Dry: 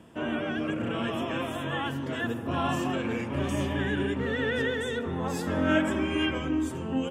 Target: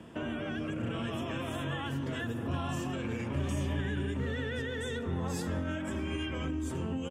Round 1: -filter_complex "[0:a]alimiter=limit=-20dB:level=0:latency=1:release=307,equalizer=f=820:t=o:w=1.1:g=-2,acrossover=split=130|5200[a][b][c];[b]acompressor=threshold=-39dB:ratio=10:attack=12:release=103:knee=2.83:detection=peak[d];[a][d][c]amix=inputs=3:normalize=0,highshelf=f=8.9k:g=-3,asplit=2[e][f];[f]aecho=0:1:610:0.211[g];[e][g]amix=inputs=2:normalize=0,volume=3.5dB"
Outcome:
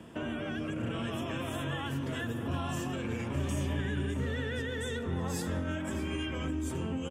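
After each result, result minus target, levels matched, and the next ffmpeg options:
echo-to-direct +9 dB; 8000 Hz band +2.5 dB
-filter_complex "[0:a]alimiter=limit=-20dB:level=0:latency=1:release=307,equalizer=f=820:t=o:w=1.1:g=-2,acrossover=split=130|5200[a][b][c];[b]acompressor=threshold=-39dB:ratio=10:attack=12:release=103:knee=2.83:detection=peak[d];[a][d][c]amix=inputs=3:normalize=0,highshelf=f=8.9k:g=-3,asplit=2[e][f];[f]aecho=0:1:610:0.075[g];[e][g]amix=inputs=2:normalize=0,volume=3.5dB"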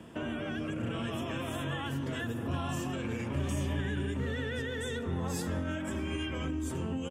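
8000 Hz band +2.5 dB
-filter_complex "[0:a]alimiter=limit=-20dB:level=0:latency=1:release=307,equalizer=f=820:t=o:w=1.1:g=-2,acrossover=split=130|5200[a][b][c];[b]acompressor=threshold=-39dB:ratio=10:attack=12:release=103:knee=2.83:detection=peak[d];[a][d][c]amix=inputs=3:normalize=0,highshelf=f=8.9k:g=-9.5,asplit=2[e][f];[f]aecho=0:1:610:0.075[g];[e][g]amix=inputs=2:normalize=0,volume=3.5dB"

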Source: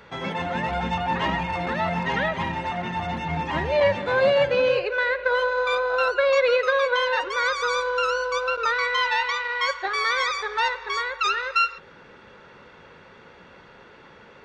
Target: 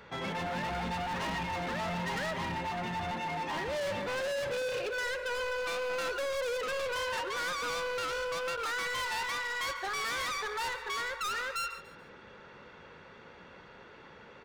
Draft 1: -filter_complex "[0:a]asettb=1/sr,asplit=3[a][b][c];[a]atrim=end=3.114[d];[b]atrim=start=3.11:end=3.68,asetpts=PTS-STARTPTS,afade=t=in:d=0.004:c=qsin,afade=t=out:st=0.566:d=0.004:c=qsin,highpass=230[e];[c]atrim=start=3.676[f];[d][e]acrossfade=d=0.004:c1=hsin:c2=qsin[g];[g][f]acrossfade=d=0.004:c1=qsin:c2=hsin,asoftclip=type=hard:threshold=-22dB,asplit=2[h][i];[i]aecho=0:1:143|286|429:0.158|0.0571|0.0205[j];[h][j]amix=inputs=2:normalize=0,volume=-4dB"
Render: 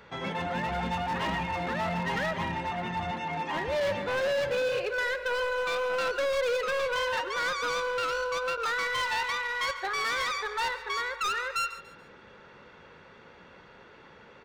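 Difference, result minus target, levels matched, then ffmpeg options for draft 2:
hard clip: distortion -5 dB
-filter_complex "[0:a]asettb=1/sr,asplit=3[a][b][c];[a]atrim=end=3.114[d];[b]atrim=start=3.11:end=3.68,asetpts=PTS-STARTPTS,afade=t=in:d=0.004:c=qsin,afade=t=out:st=0.566:d=0.004:c=qsin,highpass=230[e];[c]atrim=start=3.676[f];[d][e]acrossfade=d=0.004:c1=hsin:c2=qsin[g];[g][f]acrossfade=d=0.004:c1=qsin:c2=hsin,asoftclip=type=hard:threshold=-28.5dB,asplit=2[h][i];[i]aecho=0:1:143|286|429:0.158|0.0571|0.0205[j];[h][j]amix=inputs=2:normalize=0,volume=-4dB"

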